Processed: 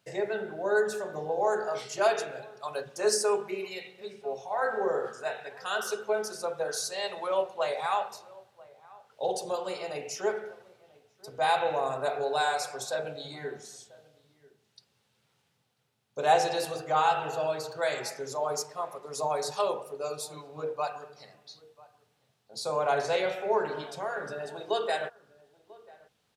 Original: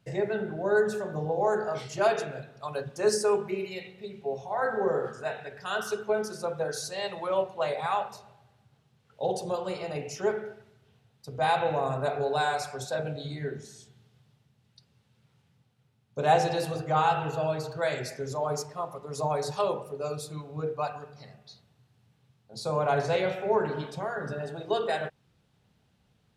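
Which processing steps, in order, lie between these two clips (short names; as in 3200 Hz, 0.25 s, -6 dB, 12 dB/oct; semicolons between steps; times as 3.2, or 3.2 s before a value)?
tone controls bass -14 dB, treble +4 dB; outdoor echo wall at 170 m, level -22 dB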